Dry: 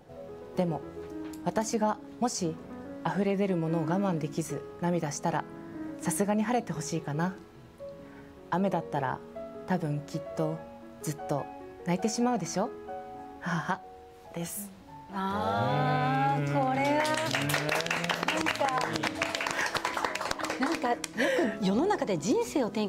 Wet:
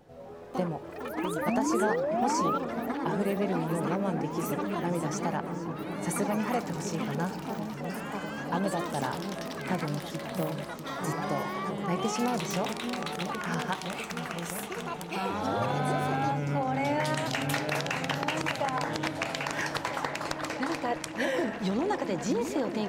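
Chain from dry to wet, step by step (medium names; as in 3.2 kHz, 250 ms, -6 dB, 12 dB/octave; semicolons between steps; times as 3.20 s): painted sound rise, 1.47–2.58 s, 210–1400 Hz -27 dBFS; delay with an opening low-pass 650 ms, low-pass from 400 Hz, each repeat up 1 oct, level -6 dB; ever faster or slower copies 135 ms, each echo +6 st, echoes 3, each echo -6 dB; trim -2.5 dB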